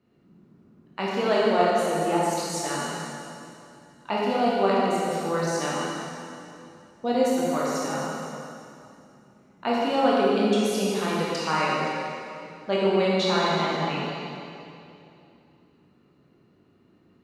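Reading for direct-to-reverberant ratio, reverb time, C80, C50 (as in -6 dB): -6.5 dB, 2.7 s, -1.5 dB, -3.5 dB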